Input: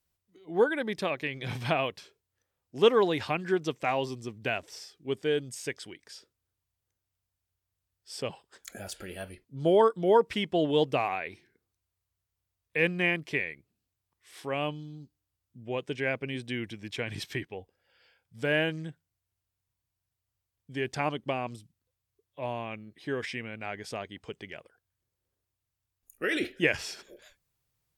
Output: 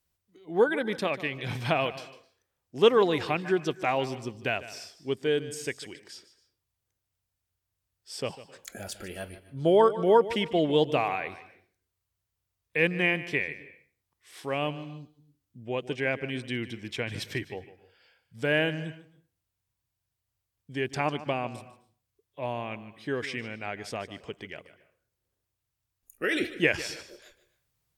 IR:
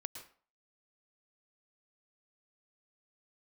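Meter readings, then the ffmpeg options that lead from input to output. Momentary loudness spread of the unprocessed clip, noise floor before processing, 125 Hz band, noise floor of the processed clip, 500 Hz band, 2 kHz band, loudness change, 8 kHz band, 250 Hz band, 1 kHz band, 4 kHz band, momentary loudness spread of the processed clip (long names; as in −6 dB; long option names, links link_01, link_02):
19 LU, below −85 dBFS, +1.5 dB, −84 dBFS, +1.5 dB, +1.5 dB, +1.5 dB, +1.5 dB, +1.5 dB, +1.5 dB, +1.5 dB, 19 LU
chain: -filter_complex "[0:a]asplit=2[link_01][link_02];[1:a]atrim=start_sample=2205,adelay=150[link_03];[link_02][link_03]afir=irnorm=-1:irlink=0,volume=-12dB[link_04];[link_01][link_04]amix=inputs=2:normalize=0,volume=1.5dB"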